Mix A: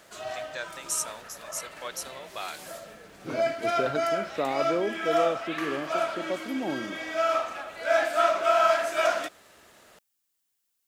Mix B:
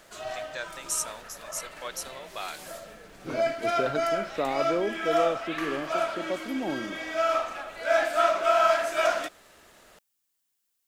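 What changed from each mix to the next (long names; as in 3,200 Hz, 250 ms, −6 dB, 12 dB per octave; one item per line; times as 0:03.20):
background: remove high-pass filter 60 Hz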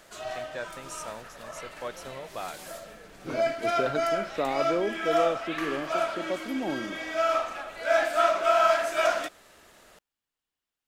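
first voice: add spectral tilt −4.5 dB per octave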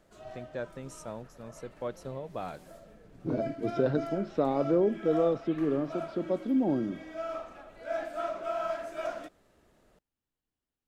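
background −9.5 dB
master: add tilt shelving filter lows +8.5 dB, about 640 Hz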